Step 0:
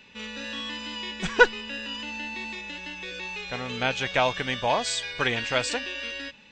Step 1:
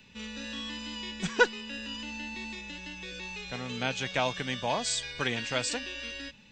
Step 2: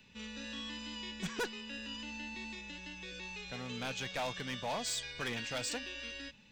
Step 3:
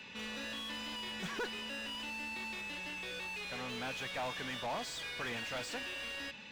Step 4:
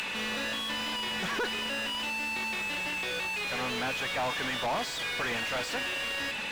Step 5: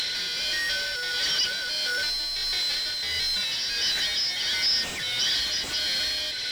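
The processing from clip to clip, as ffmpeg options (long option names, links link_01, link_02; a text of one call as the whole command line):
ffmpeg -i in.wav -filter_complex "[0:a]bass=frequency=250:gain=11,treble=frequency=4000:gain=7,acrossover=split=150|2900[link_01][link_02][link_03];[link_01]acompressor=threshold=-44dB:ratio=6[link_04];[link_04][link_02][link_03]amix=inputs=3:normalize=0,volume=-6.5dB" out.wav
ffmpeg -i in.wav -af "volume=27dB,asoftclip=hard,volume=-27dB,volume=-5dB" out.wav
ffmpeg -i in.wav -filter_complex "[0:a]asplit=2[link_01][link_02];[link_02]highpass=frequency=720:poles=1,volume=25dB,asoftclip=type=tanh:threshold=-31.5dB[link_03];[link_01][link_03]amix=inputs=2:normalize=0,lowpass=frequency=2200:poles=1,volume=-6dB,volume=-1.5dB" out.wav
ffmpeg -i in.wav -filter_complex "[0:a]asplit=2[link_01][link_02];[link_02]highpass=frequency=720:poles=1,volume=27dB,asoftclip=type=tanh:threshold=-33dB[link_03];[link_01][link_03]amix=inputs=2:normalize=0,lowpass=frequency=2500:poles=1,volume=-6dB,acompressor=mode=upward:threshold=-42dB:ratio=2.5,volume=7dB" out.wav
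ffmpeg -i in.wav -af "afftfilt=real='real(if(lt(b,272),68*(eq(floor(b/68),0)*3+eq(floor(b/68),1)*2+eq(floor(b/68),2)*1+eq(floor(b/68),3)*0)+mod(b,68),b),0)':imag='imag(if(lt(b,272),68*(eq(floor(b/68),0)*3+eq(floor(b/68),1)*2+eq(floor(b/68),2)*1+eq(floor(b/68),3)*0)+mod(b,68),b),0)':win_size=2048:overlap=0.75,tremolo=f=1.5:d=0.36,volume=7dB" out.wav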